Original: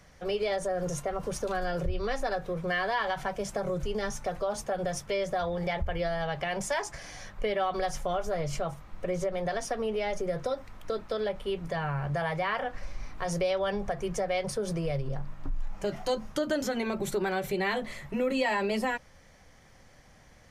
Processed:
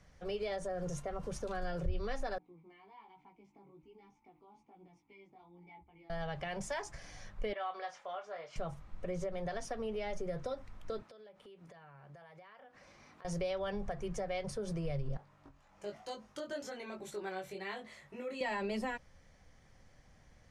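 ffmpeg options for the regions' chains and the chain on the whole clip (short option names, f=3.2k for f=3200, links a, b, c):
-filter_complex "[0:a]asettb=1/sr,asplit=3[a][b][c];[a]atrim=end=2.384[d];[b]atrim=start=2.38:end=6.1,asetpts=PTS-STARTPTS,afade=t=in:d=0.004:c=qsin,afade=t=out:st=3.716:d=0.004:c=qsin,asplit=3[e][f][g];[e]bandpass=f=300:t=q:w=8,volume=0dB[h];[f]bandpass=f=870:t=q:w=8,volume=-6dB[i];[g]bandpass=f=2.24k:t=q:w=8,volume=-9dB[j];[h][i][j]amix=inputs=3:normalize=0,flanger=delay=16:depth=4.5:speed=1.2[k];[c]atrim=start=6.096[l];[d][k]acrossfade=d=0.004:c1=hsin:c2=qsin[m];[m][l]acrossfade=d=0.004:c1=qsin:c2=hsin,asettb=1/sr,asplit=3[n][o][p];[n]atrim=end=7.534[q];[o]atrim=start=7.53:end=8.56,asetpts=PTS-STARTPTS,afade=t=in:d=0.004:c=qsin,afade=t=out:st=1.026:d=0.004:c=qsin,highpass=730,lowpass=3.5k,asplit=2[r][s];[s]adelay=24,volume=-7.5dB[t];[r][t]amix=inputs=2:normalize=0,atrim=end_sample=45423[u];[p]atrim=start=8.556[v];[q][u]acrossfade=d=0.004:c1=hsin:c2=qsin[w];[w][v]acrossfade=d=0.004:c1=qsin:c2=hsin,asettb=1/sr,asplit=3[x][y][z];[x]atrim=end=11.024[aa];[y]atrim=start=11.02:end=13.25,asetpts=PTS-STARTPTS,afade=t=in:d=0.004:c=qsin,afade=t=out:st=2.226:d=0.004:c=qsin,highpass=220,acompressor=threshold=-46dB:ratio=6:attack=3.2:release=140:knee=1:detection=peak[ab];[z]atrim=start=13.246[ac];[aa][ab]acrossfade=d=0.004:c1=hsin:c2=qsin[ad];[ad][ac]acrossfade=d=0.004:c1=qsin:c2=hsin,asettb=1/sr,asplit=3[ae][af][ag];[ae]atrim=end=15.174[ah];[af]atrim=start=15.17:end=18.41,asetpts=PTS-STARTPTS,afade=t=in:d=0.004:c=qsin,afade=t=out:st=3.236:d=0.004:c=qsin,highpass=54,bass=f=250:g=-12,treble=f=4k:g=1,flanger=delay=18.5:depth=2.9:speed=1.1[ai];[ag]atrim=start=18.406[aj];[ah][ai]acrossfade=d=0.004:c1=hsin:c2=qsin[ak];[ak][aj]acrossfade=d=0.004:c1=qsin:c2=hsin,lowpass=10k,lowshelf=f=190:g=6,volume=-9dB"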